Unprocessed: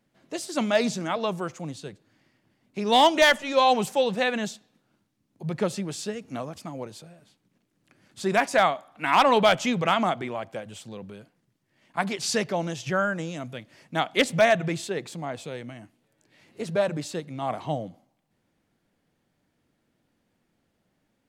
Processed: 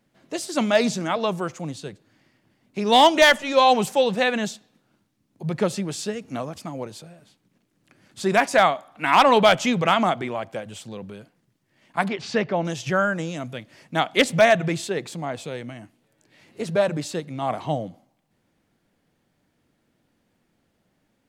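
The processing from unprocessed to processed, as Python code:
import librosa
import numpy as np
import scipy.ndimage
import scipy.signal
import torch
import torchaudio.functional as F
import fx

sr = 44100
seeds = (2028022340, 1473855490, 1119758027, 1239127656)

y = fx.lowpass(x, sr, hz=2800.0, slope=12, at=(12.08, 12.65))
y = F.gain(torch.from_numpy(y), 3.5).numpy()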